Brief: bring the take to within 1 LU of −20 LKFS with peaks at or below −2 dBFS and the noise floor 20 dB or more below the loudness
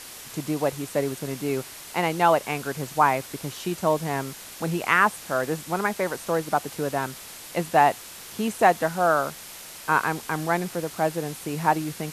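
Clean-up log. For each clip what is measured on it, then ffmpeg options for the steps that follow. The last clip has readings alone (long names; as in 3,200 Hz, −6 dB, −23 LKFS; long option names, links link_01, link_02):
background noise floor −42 dBFS; target noise floor −45 dBFS; integrated loudness −25.0 LKFS; sample peak −3.5 dBFS; target loudness −20.0 LKFS
→ -af "afftdn=noise_reduction=6:noise_floor=-42"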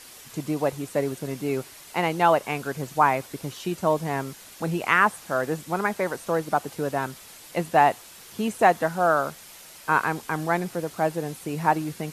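background noise floor −46 dBFS; integrated loudness −25.0 LKFS; sample peak −3.5 dBFS; target loudness −20.0 LKFS
→ -af "volume=5dB,alimiter=limit=-2dB:level=0:latency=1"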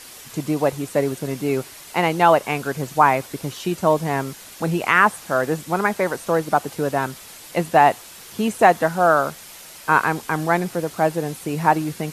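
integrated loudness −20.5 LKFS; sample peak −2.0 dBFS; background noise floor −41 dBFS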